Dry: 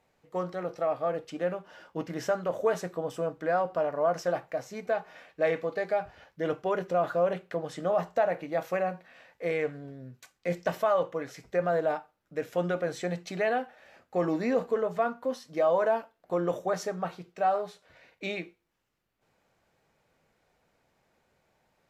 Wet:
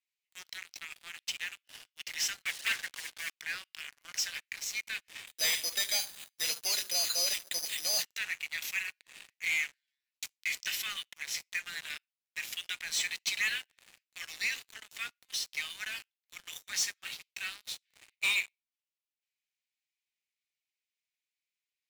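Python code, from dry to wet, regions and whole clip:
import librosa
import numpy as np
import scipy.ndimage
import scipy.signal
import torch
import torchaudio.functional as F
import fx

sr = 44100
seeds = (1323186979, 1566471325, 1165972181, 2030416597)

y = fx.chain(x, sr, fx.cheby_ripple(hz=2200.0, ripple_db=9),
    fx.peak_eq(hz=1000.0, db=14.0, octaves=0.81),
    fx.leveller(passes=2), at=(2.43, 3.3))
y = fx.chain(y, sr, fx.resample_bad(factor=8, down='none', up='hold'),
    fx.echo_feedback(ms=74, feedback_pct=60, wet_db=-21.5), at=(5.27, 8.03))
y = scipy.signal.sosfilt(scipy.signal.butter(6, 2200.0, 'highpass', fs=sr, output='sos'), y)
y = fx.leveller(y, sr, passes=5)
y = F.gain(torch.from_numpy(y), -3.0).numpy()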